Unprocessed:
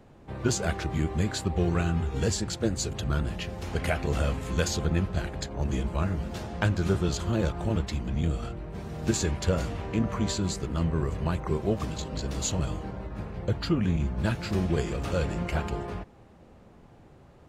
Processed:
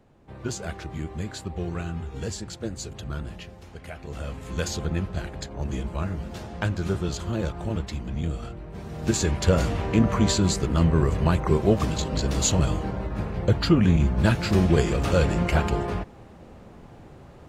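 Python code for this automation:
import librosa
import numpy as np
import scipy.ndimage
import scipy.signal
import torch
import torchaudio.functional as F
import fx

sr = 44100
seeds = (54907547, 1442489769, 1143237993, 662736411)

y = fx.gain(x, sr, db=fx.line((3.34, -5.0), (3.81, -13.0), (4.65, -1.0), (8.67, -1.0), (9.67, 7.0)))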